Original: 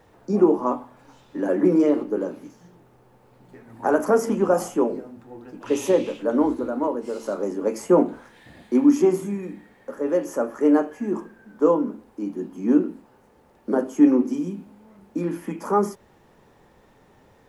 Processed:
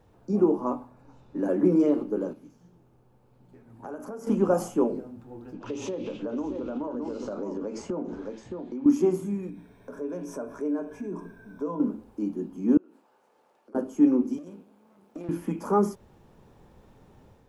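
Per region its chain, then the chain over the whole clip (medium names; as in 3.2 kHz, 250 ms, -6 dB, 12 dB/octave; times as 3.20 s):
0.63–1.49 s: band-stop 3.2 kHz, Q 7.3 + tape noise reduction on one side only decoder only
2.33–4.27 s: feedback comb 82 Hz, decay 1.9 s + compression 3:1, threshold -34 dBFS
5.53–8.86 s: low-pass 6.4 kHz 24 dB/octave + delay 617 ms -10 dB + compression, threshold -28 dBFS
9.49–11.80 s: rippled EQ curve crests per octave 1.6, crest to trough 11 dB + compression 2:1, threshold -37 dBFS
12.77–13.75 s: median filter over 3 samples + high-pass 590 Hz + compression 10:1, threshold -46 dBFS
14.38–15.29 s: partial rectifier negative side -12 dB + high-pass 290 Hz + compression 4:1, threshold -34 dBFS
whole clip: bass shelf 230 Hz +10 dB; level rider gain up to 5 dB; peaking EQ 1.9 kHz -6.5 dB 0.28 oct; trim -8.5 dB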